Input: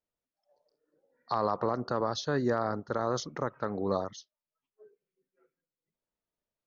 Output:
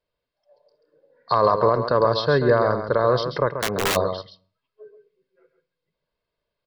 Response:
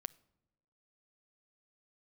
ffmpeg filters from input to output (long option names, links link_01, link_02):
-filter_complex "[0:a]aecho=1:1:1.9:0.53,aecho=1:1:135:0.376,aresample=11025,aresample=44100,asplit=2[link_01][link_02];[1:a]atrim=start_sample=2205,afade=type=out:start_time=0.36:duration=0.01,atrim=end_sample=16317[link_03];[link_02][link_03]afir=irnorm=-1:irlink=0,volume=9dB[link_04];[link_01][link_04]amix=inputs=2:normalize=0,asplit=3[link_05][link_06][link_07];[link_05]afade=type=out:start_time=3.51:duration=0.02[link_08];[link_06]aeval=exprs='(mod(6.31*val(0)+1,2)-1)/6.31':channel_layout=same,afade=type=in:start_time=3.51:duration=0.02,afade=type=out:start_time=3.95:duration=0.02[link_09];[link_07]afade=type=in:start_time=3.95:duration=0.02[link_10];[link_08][link_09][link_10]amix=inputs=3:normalize=0"